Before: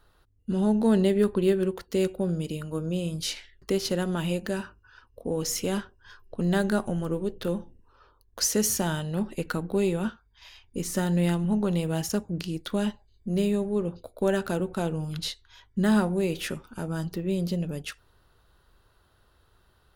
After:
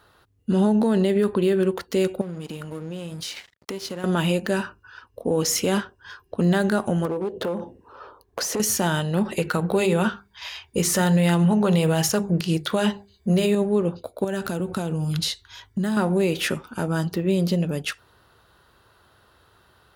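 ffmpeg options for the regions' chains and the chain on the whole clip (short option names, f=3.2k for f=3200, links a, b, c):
-filter_complex "[0:a]asettb=1/sr,asplit=3[a][b][c];[a]atrim=end=2.214[d];[b]atrim=start=2.21:end=4.04,asetpts=PTS-STARTPTS,afade=t=in:d=0.004:c=qsin,afade=t=out:st=1.826:d=0.004:c=qsin,acompressor=threshold=-36dB:ratio=4:attack=3.2:release=140:knee=1:detection=peak,aeval=exprs='sgn(val(0))*max(abs(val(0))-0.00251,0)':c=same[e];[c]atrim=start=4.036[f];[d][e]acrossfade=d=0.004:c1=hsin:c2=qsin[g];[g][f]acrossfade=d=0.004:c1=qsin:c2=hsin,asettb=1/sr,asplit=3[h][i][j];[h]atrim=end=7.054[k];[i]atrim=start=7.05:end=8.6,asetpts=PTS-STARTPTS,afade=t=in:d=0.004:c=qsin,afade=t=out:st=1.546:d=0.004:c=qsin,equalizer=f=560:t=o:w=2.6:g=11,acompressor=threshold=-30dB:ratio=6:attack=3.2:release=140:knee=1:detection=peak,aeval=exprs='clip(val(0),-1,0.0299)':c=same[l];[j]atrim=start=8.596[m];[k][l]acrossfade=d=0.004:c1=hsin:c2=qsin[n];[n][m]acrossfade=d=0.004:c1=qsin:c2=hsin,asettb=1/sr,asplit=3[o][p][q];[o]atrim=end=9.254[r];[p]atrim=start=9.25:end=13.55,asetpts=PTS-STARTPTS,afade=t=in:d=0.004:c=qsin,afade=t=out:st=4.296:d=0.004:c=qsin,equalizer=f=270:w=3.8:g=-12,bandreject=f=50:t=h:w=6,bandreject=f=100:t=h:w=6,bandreject=f=150:t=h:w=6,bandreject=f=200:t=h:w=6,bandreject=f=250:t=h:w=6,bandreject=f=300:t=h:w=6,bandreject=f=350:t=h:w=6,bandreject=f=400:t=h:w=6,acontrast=52[s];[q]atrim=start=13.546[t];[r][s]acrossfade=d=0.004:c1=hsin:c2=qsin[u];[u][t]acrossfade=d=0.004:c1=qsin:c2=hsin,asettb=1/sr,asplit=3[v][w][x];[v]atrim=end=14.244[y];[w]atrim=start=14.24:end=15.97,asetpts=PTS-STARTPTS,afade=t=in:d=0.004:c=qsin,afade=t=out:st=1.726:d=0.004:c=qsin,acompressor=threshold=-32dB:ratio=5:attack=3.2:release=140:knee=1:detection=peak,bass=f=250:g=6,treble=f=4k:g=6[z];[x]atrim=start=15.966[aa];[y][z]acrossfade=d=0.004:c1=hsin:c2=qsin[ab];[ab][aa]acrossfade=d=0.004:c1=qsin:c2=hsin,highpass=83,equalizer=f=1.4k:w=0.36:g=3.5,alimiter=limit=-18.5dB:level=0:latency=1:release=71,volume=6dB"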